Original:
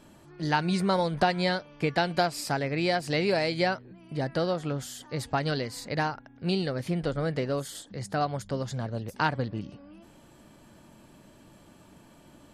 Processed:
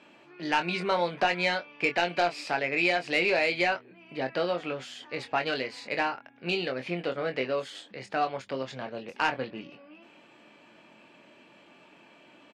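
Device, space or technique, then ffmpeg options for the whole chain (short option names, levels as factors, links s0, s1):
intercom: -filter_complex "[0:a]highpass=310,lowpass=4000,equalizer=f=2500:t=o:w=0.55:g=11.5,asoftclip=type=tanh:threshold=0.188,asplit=2[s0][s1];[s1]adelay=23,volume=0.447[s2];[s0][s2]amix=inputs=2:normalize=0"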